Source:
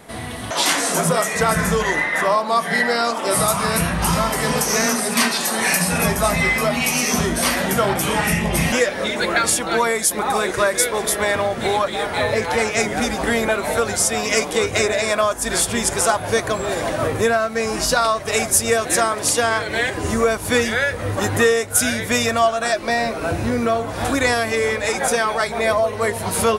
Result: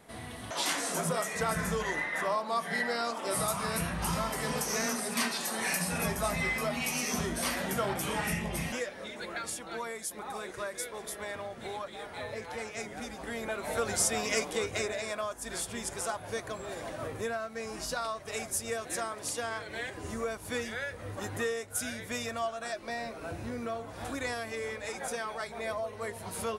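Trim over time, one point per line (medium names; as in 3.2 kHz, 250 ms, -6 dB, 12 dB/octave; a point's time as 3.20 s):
8.32 s -13 dB
9.02 s -19.5 dB
13.27 s -19.5 dB
13.99 s -9 dB
15.20 s -17 dB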